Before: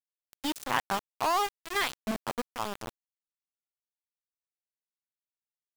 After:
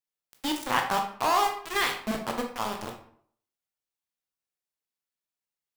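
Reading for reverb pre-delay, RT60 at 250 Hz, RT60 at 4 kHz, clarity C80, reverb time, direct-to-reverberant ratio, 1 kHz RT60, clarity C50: 14 ms, 0.60 s, 0.40 s, 11.0 dB, 0.60 s, 2.0 dB, 0.55 s, 7.0 dB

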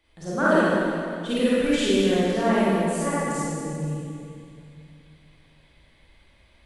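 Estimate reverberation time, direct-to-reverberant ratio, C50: 2.4 s, −10.5 dB, −7.0 dB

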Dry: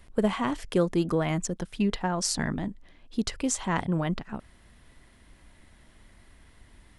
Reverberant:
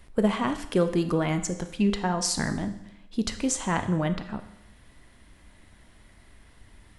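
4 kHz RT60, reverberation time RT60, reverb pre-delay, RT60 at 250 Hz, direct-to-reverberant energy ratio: 0.85 s, 0.85 s, 10 ms, 0.85 s, 8.5 dB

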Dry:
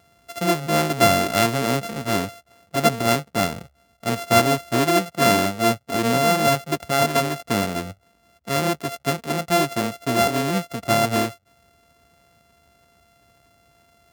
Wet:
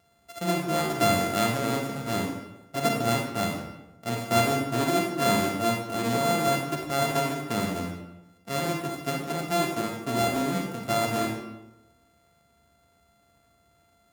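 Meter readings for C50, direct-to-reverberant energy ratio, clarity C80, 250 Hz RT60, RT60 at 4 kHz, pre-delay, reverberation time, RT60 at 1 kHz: 3.5 dB, 1.0 dB, 6.0 dB, 1.1 s, 0.65 s, 32 ms, 0.95 s, 0.90 s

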